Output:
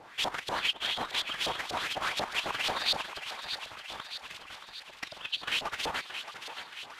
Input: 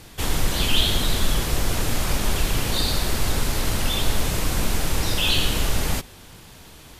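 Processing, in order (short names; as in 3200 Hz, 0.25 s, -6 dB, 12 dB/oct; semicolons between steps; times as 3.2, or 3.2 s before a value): 3.01–5.43 low shelf 200 Hz +7.5 dB; negative-ratio compressor -22 dBFS, ratio -0.5; LFO band-pass saw up 4.1 Hz 650–3900 Hz; thinning echo 0.624 s, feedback 63%, high-pass 660 Hz, level -8.5 dB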